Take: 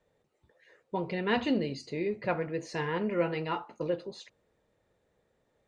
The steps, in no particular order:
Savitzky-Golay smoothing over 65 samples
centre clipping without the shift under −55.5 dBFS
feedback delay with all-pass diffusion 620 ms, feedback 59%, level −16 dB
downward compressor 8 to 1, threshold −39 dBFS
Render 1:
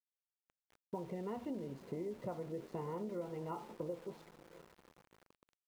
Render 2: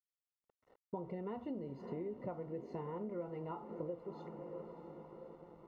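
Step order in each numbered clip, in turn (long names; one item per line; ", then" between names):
Savitzky-Golay smoothing, then downward compressor, then feedback delay with all-pass diffusion, then centre clipping without the shift
feedback delay with all-pass diffusion, then downward compressor, then centre clipping without the shift, then Savitzky-Golay smoothing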